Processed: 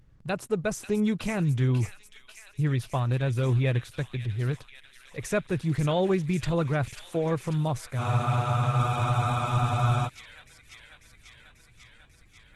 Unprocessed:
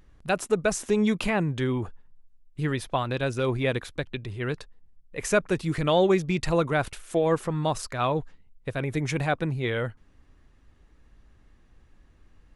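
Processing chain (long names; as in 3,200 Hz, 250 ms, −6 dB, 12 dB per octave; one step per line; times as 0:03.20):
parametric band 120 Hz +12.5 dB 0.88 octaves
delay with a high-pass on its return 543 ms, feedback 75%, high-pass 2,400 Hz, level −7 dB
frozen spectrum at 0:08.00, 2.06 s
level −4.5 dB
Opus 16 kbit/s 48,000 Hz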